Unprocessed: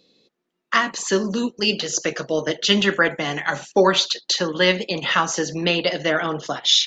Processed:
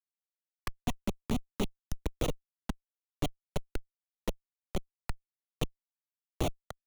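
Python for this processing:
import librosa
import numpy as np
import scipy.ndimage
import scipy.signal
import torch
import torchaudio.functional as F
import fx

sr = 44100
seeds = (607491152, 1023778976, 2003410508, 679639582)

y = fx.local_reverse(x, sr, ms=134.0)
y = fx.high_shelf(y, sr, hz=7600.0, db=3.0)
y = fx.gate_flip(y, sr, shuts_db=-15.0, range_db=-29)
y = fx.schmitt(y, sr, flips_db=-31.0)
y = fx.env_flanger(y, sr, rest_ms=9.3, full_db=-42.5)
y = fx.band_squash(y, sr, depth_pct=40)
y = F.gain(torch.from_numpy(y), 12.0).numpy()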